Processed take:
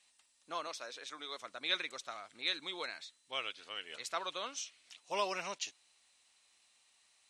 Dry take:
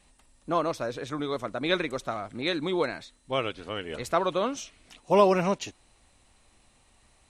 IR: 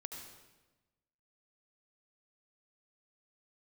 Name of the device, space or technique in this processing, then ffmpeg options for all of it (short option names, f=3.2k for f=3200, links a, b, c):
piezo pickup straight into a mixer: -filter_complex "[0:a]lowpass=5.2k,aderivative,asettb=1/sr,asplit=3[a][b][c];[a]atrim=end=0.674[d];[b]atrim=start=0.67:end=1.42,asetpts=PTS-STARTPTS,afade=t=in:d=0.004:c=qsin,afade=t=out:st=0.746:d=0.004:c=qsin,highpass=230[e];[c]atrim=start=1.416[f];[d][e]acrossfade=d=0.004:c1=hsin:c2=qsin[g];[g][f]acrossfade=d=0.004:c1=qsin:c2=hsin,volume=4.5dB"